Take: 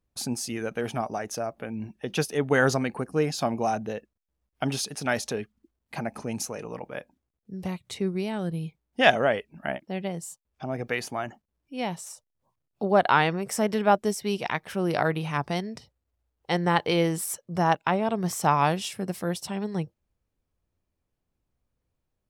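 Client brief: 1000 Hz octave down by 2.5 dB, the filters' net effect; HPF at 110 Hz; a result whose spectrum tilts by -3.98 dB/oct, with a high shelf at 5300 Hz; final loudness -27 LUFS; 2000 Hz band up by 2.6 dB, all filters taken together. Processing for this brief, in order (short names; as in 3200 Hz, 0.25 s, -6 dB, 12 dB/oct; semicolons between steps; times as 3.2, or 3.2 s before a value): HPF 110 Hz; bell 1000 Hz -4.5 dB; bell 2000 Hz +4.5 dB; high shelf 5300 Hz +3.5 dB; gain +0.5 dB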